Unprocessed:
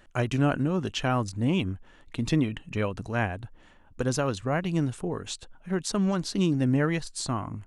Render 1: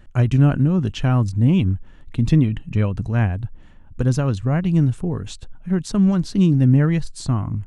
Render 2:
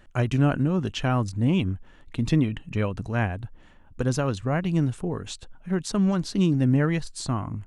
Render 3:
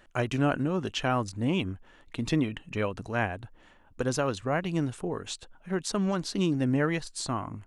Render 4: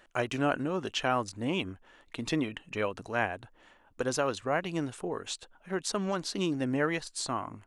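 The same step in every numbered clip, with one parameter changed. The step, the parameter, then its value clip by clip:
tone controls, bass: +14 dB, +5 dB, -4 dB, -13 dB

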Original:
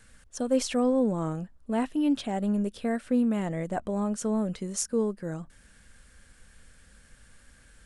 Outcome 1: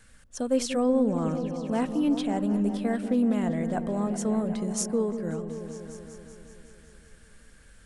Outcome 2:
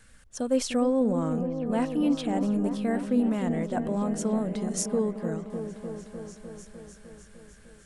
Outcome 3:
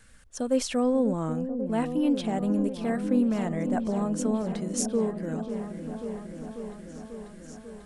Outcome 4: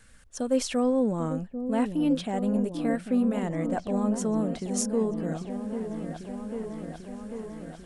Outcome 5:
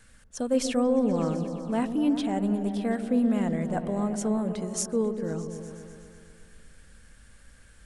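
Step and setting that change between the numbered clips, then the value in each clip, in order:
delay with an opening low-pass, time: 189 ms, 302 ms, 542 ms, 794 ms, 123 ms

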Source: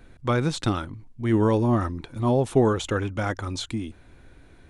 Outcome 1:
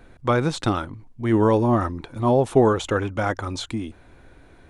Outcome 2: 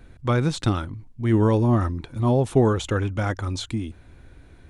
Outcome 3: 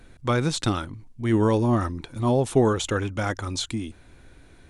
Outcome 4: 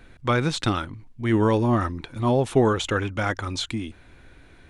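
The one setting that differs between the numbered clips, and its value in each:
peaking EQ, frequency: 770 Hz, 70 Hz, 8.4 kHz, 2.4 kHz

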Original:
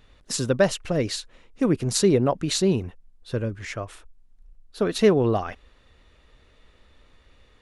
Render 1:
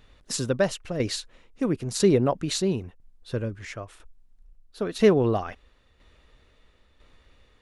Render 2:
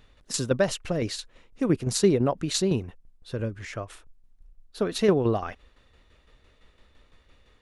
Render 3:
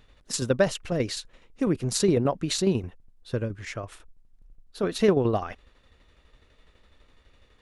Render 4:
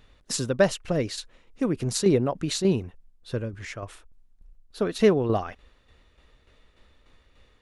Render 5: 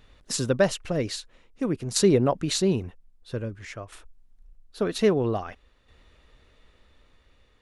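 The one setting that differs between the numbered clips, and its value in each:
tremolo, rate: 1 Hz, 5.9 Hz, 12 Hz, 3.4 Hz, 0.51 Hz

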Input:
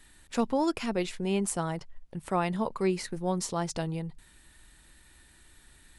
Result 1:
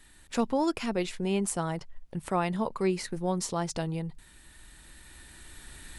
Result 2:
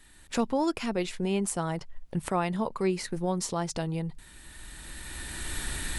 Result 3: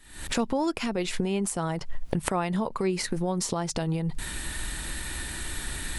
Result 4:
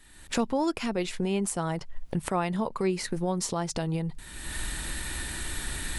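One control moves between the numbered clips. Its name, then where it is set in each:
recorder AGC, rising by: 5 dB/s, 13 dB/s, 88 dB/s, 35 dB/s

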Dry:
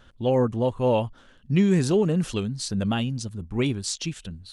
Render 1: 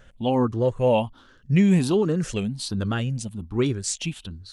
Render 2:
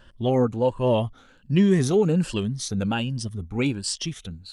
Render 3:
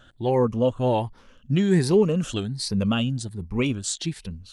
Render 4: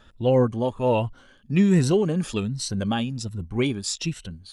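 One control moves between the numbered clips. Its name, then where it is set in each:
drifting ripple filter, ripples per octave: 0.53, 1.3, 0.85, 2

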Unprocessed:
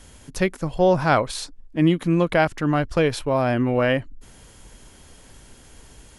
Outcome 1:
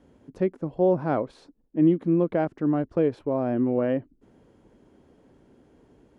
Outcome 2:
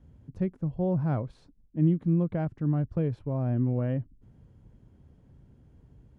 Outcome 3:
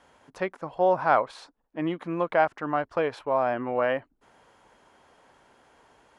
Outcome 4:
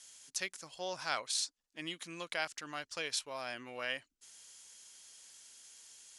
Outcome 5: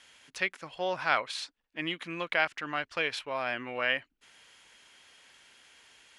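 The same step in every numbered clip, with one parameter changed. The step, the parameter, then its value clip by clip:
band-pass filter, frequency: 320 Hz, 120 Hz, 910 Hz, 6.3 kHz, 2.5 kHz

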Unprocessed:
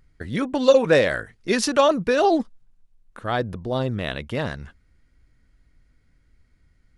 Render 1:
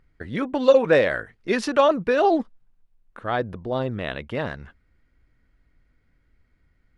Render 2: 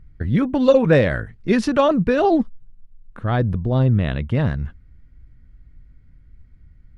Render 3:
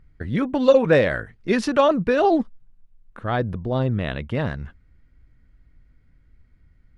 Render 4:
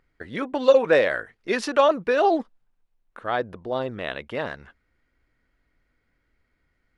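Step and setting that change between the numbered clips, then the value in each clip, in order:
tone controls, bass: -4 dB, +13 dB, +5 dB, -13 dB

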